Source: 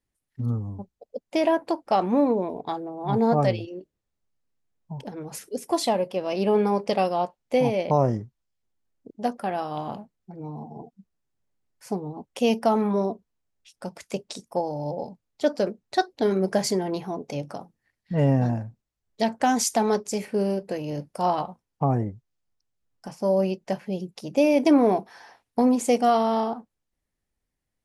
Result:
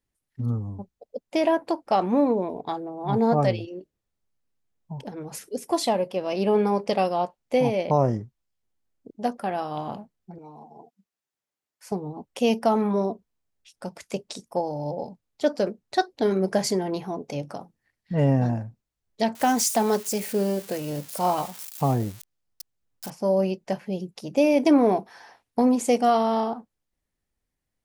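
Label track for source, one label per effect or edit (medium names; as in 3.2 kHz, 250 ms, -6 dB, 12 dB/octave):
10.380000	11.920000	high-pass 850 Hz 6 dB/octave
19.350000	23.100000	zero-crossing glitches of -27 dBFS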